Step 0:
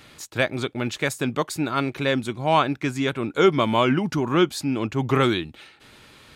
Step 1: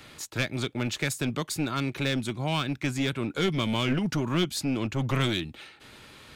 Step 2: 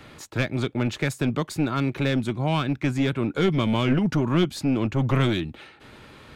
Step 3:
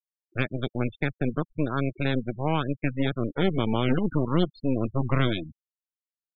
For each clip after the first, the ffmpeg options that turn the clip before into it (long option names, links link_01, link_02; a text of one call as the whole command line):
ffmpeg -i in.wav -filter_complex "[0:a]acrossover=split=260|2000[link_01][link_02][link_03];[link_02]acompressor=threshold=-32dB:ratio=6[link_04];[link_01][link_04][link_03]amix=inputs=3:normalize=0,aeval=exprs='clip(val(0),-1,0.0562)':channel_layout=same" out.wav
ffmpeg -i in.wav -af "highshelf=frequency=2600:gain=-11.5,volume=5.5dB" out.wav
ffmpeg -i in.wav -af "aeval=exprs='0.422*(cos(1*acos(clip(val(0)/0.422,-1,1)))-cos(1*PI/2))+0.0596*(cos(4*acos(clip(val(0)/0.422,-1,1)))-cos(4*PI/2))+0.0168*(cos(7*acos(clip(val(0)/0.422,-1,1)))-cos(7*PI/2))+0.0266*(cos(8*acos(clip(val(0)/0.422,-1,1)))-cos(8*PI/2))':channel_layout=same,afftfilt=real='re*gte(hypot(re,im),0.0631)':imag='im*gte(hypot(re,im),0.0631)':win_size=1024:overlap=0.75,volume=-4dB" out.wav